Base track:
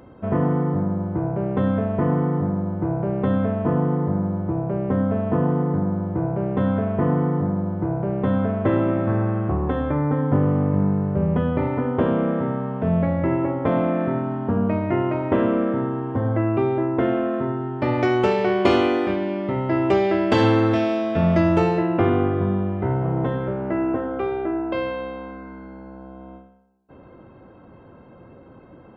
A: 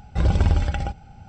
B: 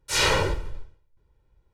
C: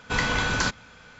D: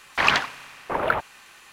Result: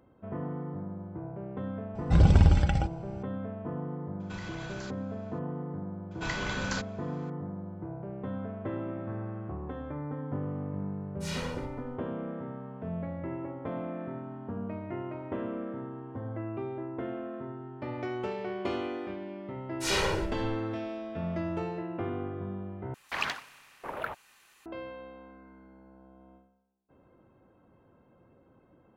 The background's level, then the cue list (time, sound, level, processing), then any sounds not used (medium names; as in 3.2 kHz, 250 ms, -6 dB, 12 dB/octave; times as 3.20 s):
base track -15.5 dB
1.95 s: add A -2.5 dB + peaking EQ 150 Hz +6.5 dB 1.1 oct
4.20 s: add C -14 dB + peak limiter -20.5 dBFS
6.11 s: add C -9.5 dB
11.12 s: add B -17 dB
19.72 s: add B -7.5 dB
22.94 s: replace with D -13 dB + treble shelf 9.7 kHz +9 dB